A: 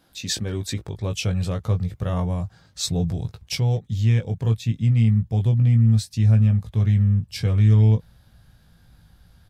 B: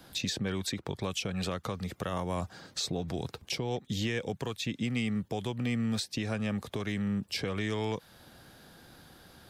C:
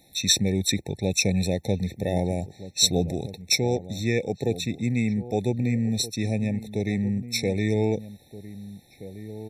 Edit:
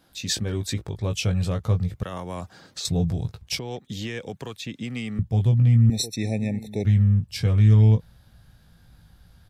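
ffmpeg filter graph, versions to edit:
-filter_complex "[1:a]asplit=2[a][b];[0:a]asplit=4[c][d][e][f];[c]atrim=end=2.032[g];[a]atrim=start=2.028:end=2.852[h];[d]atrim=start=2.848:end=3.592[i];[b]atrim=start=3.588:end=5.192[j];[e]atrim=start=5.188:end=5.902[k];[2:a]atrim=start=5.898:end=6.852[l];[f]atrim=start=6.848[m];[g][h]acrossfade=d=0.004:c1=hsin:c2=hsin[n];[n][i]acrossfade=d=0.004:c1=hsin:c2=hsin[o];[o][j]acrossfade=d=0.004:c1=hsin:c2=hsin[p];[p][k]acrossfade=d=0.004:c1=hsin:c2=hsin[q];[q][l]acrossfade=d=0.004:c1=hsin:c2=hsin[r];[r][m]acrossfade=d=0.004:c1=hsin:c2=hsin"

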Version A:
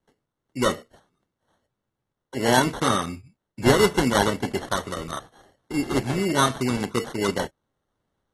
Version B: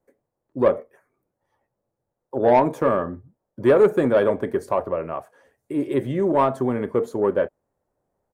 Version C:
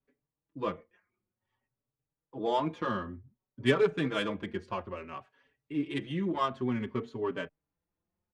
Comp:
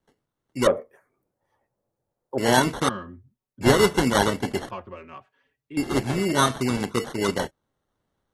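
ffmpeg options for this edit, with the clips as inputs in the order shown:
-filter_complex "[2:a]asplit=2[a][b];[0:a]asplit=4[c][d][e][f];[c]atrim=end=0.672[g];[1:a]atrim=start=0.668:end=2.382[h];[d]atrim=start=2.378:end=2.892[i];[a]atrim=start=2.888:end=3.612[j];[e]atrim=start=3.608:end=4.712[k];[b]atrim=start=4.708:end=5.772[l];[f]atrim=start=5.768[m];[g][h]acrossfade=d=0.004:c1=hsin:c2=hsin[n];[n][i]acrossfade=d=0.004:c1=hsin:c2=hsin[o];[o][j]acrossfade=d=0.004:c1=hsin:c2=hsin[p];[p][k]acrossfade=d=0.004:c1=hsin:c2=hsin[q];[q][l]acrossfade=d=0.004:c1=hsin:c2=hsin[r];[r][m]acrossfade=d=0.004:c1=hsin:c2=hsin"

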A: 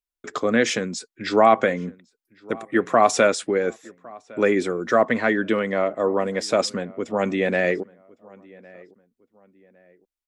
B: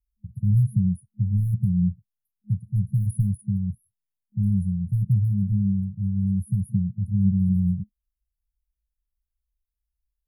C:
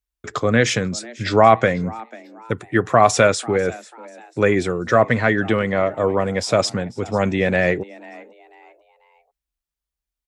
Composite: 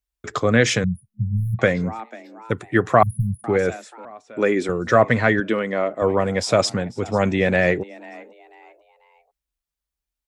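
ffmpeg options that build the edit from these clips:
-filter_complex "[1:a]asplit=2[a][b];[0:a]asplit=2[c][d];[2:a]asplit=5[e][f][g][h][i];[e]atrim=end=0.842[j];[a]atrim=start=0.838:end=1.592[k];[f]atrim=start=1.588:end=3.032[l];[b]atrim=start=3.028:end=3.442[m];[g]atrim=start=3.438:end=4.052[n];[c]atrim=start=4.048:end=4.692[o];[h]atrim=start=4.688:end=5.402[p];[d]atrim=start=5.398:end=6.022[q];[i]atrim=start=6.018[r];[j][k]acrossfade=d=0.004:c1=hsin:c2=hsin[s];[s][l]acrossfade=d=0.004:c1=hsin:c2=hsin[t];[t][m]acrossfade=d=0.004:c1=hsin:c2=hsin[u];[u][n]acrossfade=d=0.004:c1=hsin:c2=hsin[v];[v][o]acrossfade=d=0.004:c1=hsin:c2=hsin[w];[w][p]acrossfade=d=0.004:c1=hsin:c2=hsin[x];[x][q]acrossfade=d=0.004:c1=hsin:c2=hsin[y];[y][r]acrossfade=d=0.004:c1=hsin:c2=hsin"

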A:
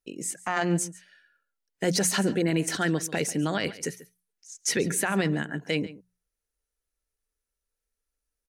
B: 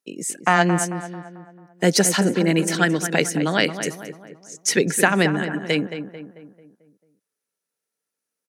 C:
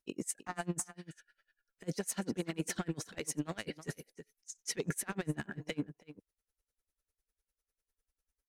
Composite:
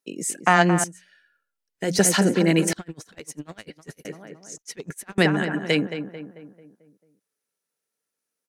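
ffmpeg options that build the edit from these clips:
-filter_complex "[2:a]asplit=2[a][b];[1:a]asplit=4[c][d][e][f];[c]atrim=end=0.842[g];[0:a]atrim=start=0.838:end=1.992[h];[d]atrim=start=1.988:end=2.732[i];[a]atrim=start=2.728:end=4.052[j];[e]atrim=start=4.048:end=4.582[k];[b]atrim=start=4.578:end=5.182[l];[f]atrim=start=5.178[m];[g][h]acrossfade=d=0.004:c1=hsin:c2=hsin[n];[n][i]acrossfade=d=0.004:c1=hsin:c2=hsin[o];[o][j]acrossfade=d=0.004:c1=hsin:c2=hsin[p];[p][k]acrossfade=d=0.004:c1=hsin:c2=hsin[q];[q][l]acrossfade=d=0.004:c1=hsin:c2=hsin[r];[r][m]acrossfade=d=0.004:c1=hsin:c2=hsin"

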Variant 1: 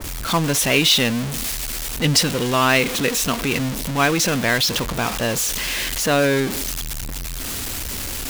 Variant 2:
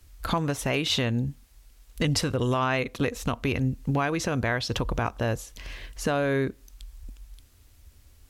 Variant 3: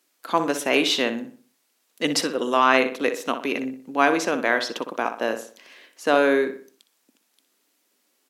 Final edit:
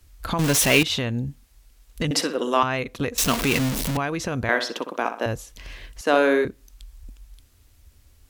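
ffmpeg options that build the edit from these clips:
-filter_complex "[0:a]asplit=2[a][b];[2:a]asplit=3[c][d][e];[1:a]asplit=6[f][g][h][i][j][k];[f]atrim=end=0.392[l];[a]atrim=start=0.388:end=0.832[m];[g]atrim=start=0.828:end=2.112[n];[c]atrim=start=2.108:end=2.632[o];[h]atrim=start=2.628:end=3.182[p];[b]atrim=start=3.178:end=3.972[q];[i]atrim=start=3.968:end=4.492[r];[d]atrim=start=4.488:end=5.262[s];[j]atrim=start=5.258:end=6.012[t];[e]atrim=start=6.008:end=6.452[u];[k]atrim=start=6.448[v];[l][m]acrossfade=d=0.004:c1=hsin:c2=hsin[w];[w][n]acrossfade=d=0.004:c1=hsin:c2=hsin[x];[x][o]acrossfade=d=0.004:c1=hsin:c2=hsin[y];[y][p]acrossfade=d=0.004:c1=hsin:c2=hsin[z];[z][q]acrossfade=d=0.004:c1=hsin:c2=hsin[aa];[aa][r]acrossfade=d=0.004:c1=hsin:c2=hsin[ab];[ab][s]acrossfade=d=0.004:c1=hsin:c2=hsin[ac];[ac][t]acrossfade=d=0.004:c1=hsin:c2=hsin[ad];[ad][u]acrossfade=d=0.004:c1=hsin:c2=hsin[ae];[ae][v]acrossfade=d=0.004:c1=hsin:c2=hsin"

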